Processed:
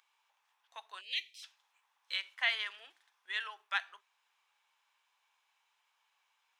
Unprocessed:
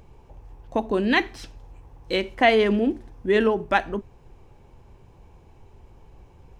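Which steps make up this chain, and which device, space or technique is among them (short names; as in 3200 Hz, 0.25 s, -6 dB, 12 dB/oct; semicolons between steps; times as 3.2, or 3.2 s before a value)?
headphones lying on a table (HPF 1200 Hz 24 dB/oct; bell 3500 Hz +6.5 dB 0.36 oct); 1.01–1.43 elliptic band-stop 560–2400 Hz, stop band 40 dB; gain -9 dB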